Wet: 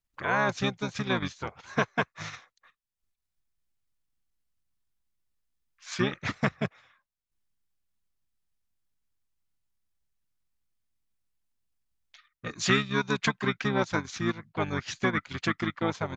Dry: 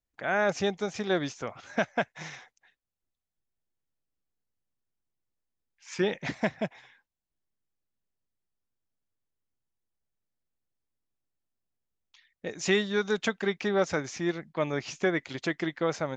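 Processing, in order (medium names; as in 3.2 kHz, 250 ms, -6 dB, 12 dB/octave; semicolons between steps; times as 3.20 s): peaking EQ 510 Hz -8.5 dB 1.5 oct; harmony voices -7 st -2 dB; transient shaper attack +1 dB, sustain -8 dB; trim +2 dB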